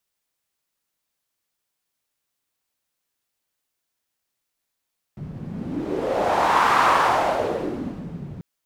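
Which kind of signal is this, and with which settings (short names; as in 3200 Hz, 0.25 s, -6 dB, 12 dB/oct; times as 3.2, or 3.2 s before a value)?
wind-like swept noise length 3.24 s, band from 150 Hz, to 1100 Hz, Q 2.9, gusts 1, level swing 17 dB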